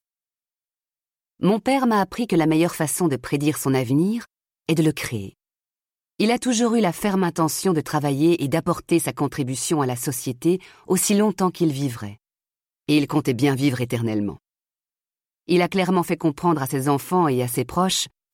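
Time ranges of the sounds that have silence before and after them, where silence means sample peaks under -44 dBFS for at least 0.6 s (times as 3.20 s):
1.40–5.30 s
6.19–12.15 s
12.88–14.36 s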